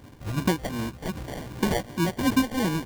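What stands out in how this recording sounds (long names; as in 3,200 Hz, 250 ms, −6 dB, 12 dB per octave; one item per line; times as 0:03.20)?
phaser sweep stages 2, 2.7 Hz, lowest notch 260–1,600 Hz
aliases and images of a low sample rate 1,300 Hz, jitter 0%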